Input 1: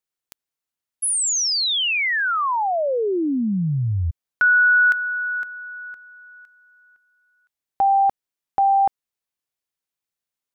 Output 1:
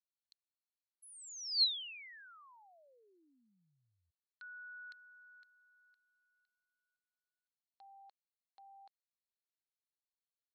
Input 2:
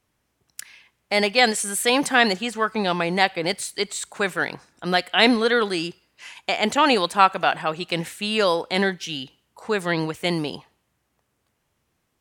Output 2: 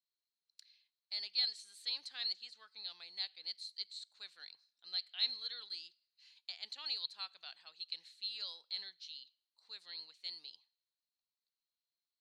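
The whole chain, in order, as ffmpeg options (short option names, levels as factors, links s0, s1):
-af "bandpass=f=4200:t=q:w=14:csg=0,volume=0.596"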